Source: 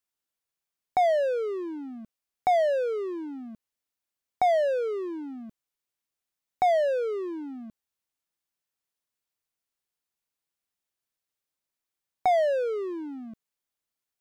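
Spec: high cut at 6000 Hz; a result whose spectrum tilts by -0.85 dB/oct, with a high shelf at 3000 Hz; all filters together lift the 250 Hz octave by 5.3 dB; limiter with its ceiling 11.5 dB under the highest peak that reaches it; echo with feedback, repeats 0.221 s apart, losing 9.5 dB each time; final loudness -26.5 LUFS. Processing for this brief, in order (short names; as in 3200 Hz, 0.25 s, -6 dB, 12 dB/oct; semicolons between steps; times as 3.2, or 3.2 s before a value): LPF 6000 Hz; bell 250 Hz +7 dB; high shelf 3000 Hz +8.5 dB; limiter -24 dBFS; feedback echo 0.221 s, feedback 33%, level -9.5 dB; gain +4.5 dB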